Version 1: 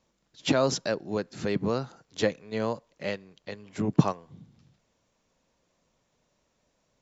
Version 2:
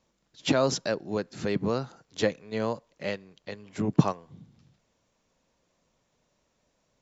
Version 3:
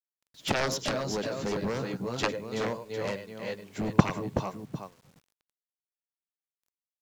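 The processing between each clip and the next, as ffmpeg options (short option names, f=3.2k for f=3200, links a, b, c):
-af anull
-af "aecho=1:1:100|102|376|392|752:0.2|0.1|0.473|0.316|0.211,aeval=exprs='0.562*(cos(1*acos(clip(val(0)/0.562,-1,1)))-cos(1*PI/2))+0.158*(cos(7*acos(clip(val(0)/0.562,-1,1)))-cos(7*PI/2))':c=same,acrusher=bits=9:mix=0:aa=0.000001"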